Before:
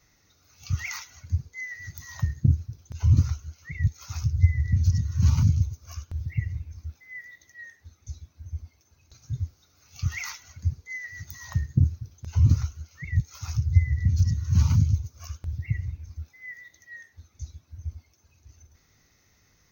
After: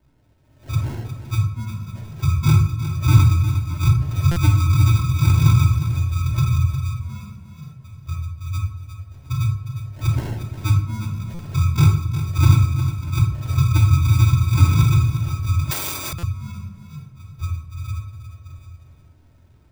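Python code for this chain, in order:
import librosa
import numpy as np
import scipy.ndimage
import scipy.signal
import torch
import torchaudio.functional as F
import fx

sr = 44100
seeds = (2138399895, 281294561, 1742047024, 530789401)

p1 = fx.partial_stretch(x, sr, pct=83)
p2 = scipy.signal.sosfilt(scipy.signal.butter(2, 7600.0, 'lowpass', fs=sr, output='sos'), p1)
p3 = fx.peak_eq(p2, sr, hz=76.0, db=11.5, octaves=1.9)
p4 = fx.rider(p3, sr, range_db=3, speed_s=0.5)
p5 = p3 + (p4 * librosa.db_to_amplitude(3.0))
p6 = fx.sample_hold(p5, sr, seeds[0], rate_hz=1200.0, jitter_pct=0)
p7 = 10.0 ** (0.0 / 20.0) * np.tanh(p6 / 10.0 ** (0.0 / 20.0))
p8 = p7 + fx.echo_feedback(p7, sr, ms=357, feedback_pct=28, wet_db=-11.0, dry=0)
p9 = fx.room_shoebox(p8, sr, seeds[1], volume_m3=860.0, walls='furnished', distance_m=2.7)
p10 = fx.buffer_glitch(p9, sr, at_s=(4.31, 11.34, 16.18), block=256, repeats=8)
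p11 = fx.spectral_comp(p10, sr, ratio=10.0, at=(15.71, 16.13))
y = p11 * librosa.db_to_amplitude(-8.5)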